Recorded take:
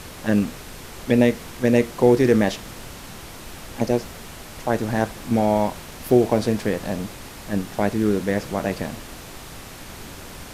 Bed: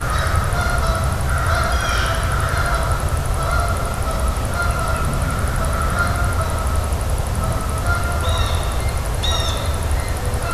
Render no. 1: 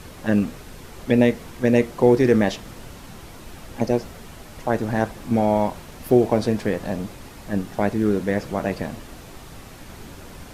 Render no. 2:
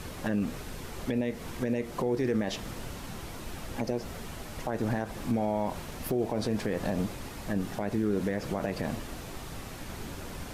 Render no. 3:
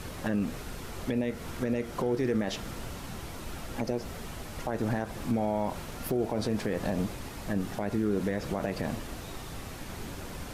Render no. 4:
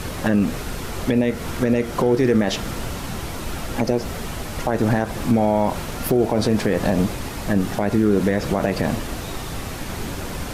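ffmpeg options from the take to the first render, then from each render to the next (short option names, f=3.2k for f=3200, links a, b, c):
-af "afftdn=nr=6:nf=-39"
-af "acompressor=threshold=-20dB:ratio=6,alimiter=limit=-19dB:level=0:latency=1:release=58"
-filter_complex "[1:a]volume=-32.5dB[a];[0:a][a]amix=inputs=2:normalize=0"
-af "volume=11dB"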